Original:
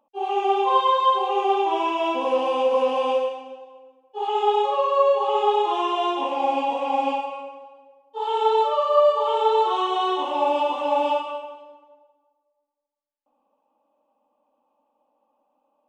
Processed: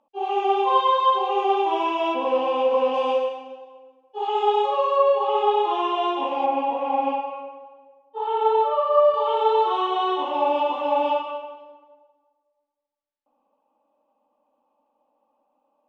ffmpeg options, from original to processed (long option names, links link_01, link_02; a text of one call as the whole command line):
ffmpeg -i in.wav -af "asetnsamples=nb_out_samples=441:pad=0,asendcmd='2.14 lowpass f 3700;2.94 lowpass f 5800;4.96 lowpass f 3900;6.46 lowpass f 2200;9.14 lowpass f 3700',lowpass=5600" out.wav